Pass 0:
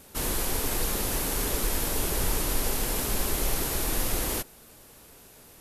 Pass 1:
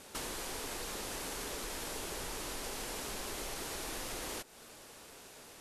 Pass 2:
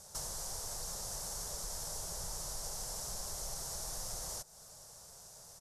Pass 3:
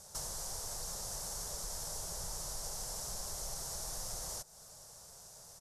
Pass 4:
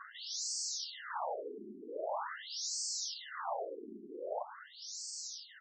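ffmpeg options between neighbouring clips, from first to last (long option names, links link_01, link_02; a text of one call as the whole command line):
ffmpeg -i in.wav -af "lowpass=8400,lowshelf=frequency=210:gain=-12,acompressor=threshold=-41dB:ratio=5,volume=2dB" out.wav
ffmpeg -i in.wav -af "firequalizer=gain_entry='entry(160,0);entry(260,-21);entry(600,-4);entry(2500,-20);entry(5500,3);entry(13000,-3)':delay=0.05:min_phase=1,volume=2dB" out.wav
ffmpeg -i in.wav -af anull out.wav
ffmpeg -i in.wav -filter_complex "[0:a]asplit=2[link_01][link_02];[link_02]highpass=frequency=720:poles=1,volume=22dB,asoftclip=type=tanh:threshold=-28dB[link_03];[link_01][link_03]amix=inputs=2:normalize=0,lowpass=frequency=1200:poles=1,volume=-6dB,asuperstop=centerf=2400:order=20:qfactor=3.7,afftfilt=real='re*between(b*sr/1024,280*pow(6100/280,0.5+0.5*sin(2*PI*0.44*pts/sr))/1.41,280*pow(6100/280,0.5+0.5*sin(2*PI*0.44*pts/sr))*1.41)':imag='im*between(b*sr/1024,280*pow(6100/280,0.5+0.5*sin(2*PI*0.44*pts/sr))/1.41,280*pow(6100/280,0.5+0.5*sin(2*PI*0.44*pts/sr))*1.41)':win_size=1024:overlap=0.75,volume=12.5dB" out.wav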